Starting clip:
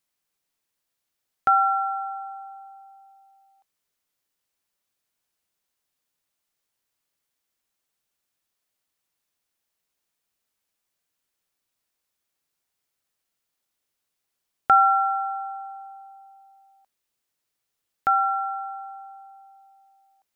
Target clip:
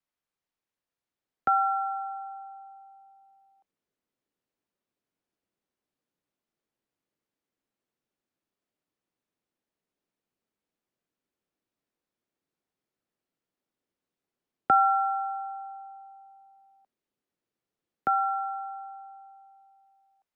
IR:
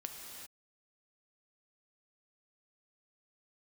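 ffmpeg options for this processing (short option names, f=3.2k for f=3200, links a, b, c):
-filter_complex "[0:a]lowpass=f=2.1k:p=1,acrossover=split=160|460|1100[a][b][c][d];[b]dynaudnorm=f=260:g=11:m=11dB[e];[a][e][c][d]amix=inputs=4:normalize=0,volume=-4.5dB"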